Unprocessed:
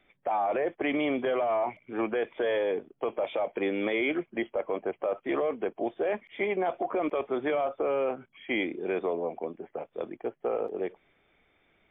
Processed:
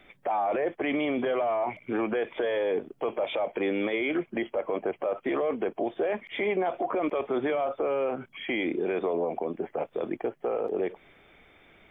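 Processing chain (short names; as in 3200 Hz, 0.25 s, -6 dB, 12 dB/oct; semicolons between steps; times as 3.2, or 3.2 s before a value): in parallel at +2 dB: compressor, threshold -36 dBFS, peak gain reduction 11.5 dB; on the sum: limiter -23.5 dBFS, peak gain reduction 9.5 dB; gain +3.5 dB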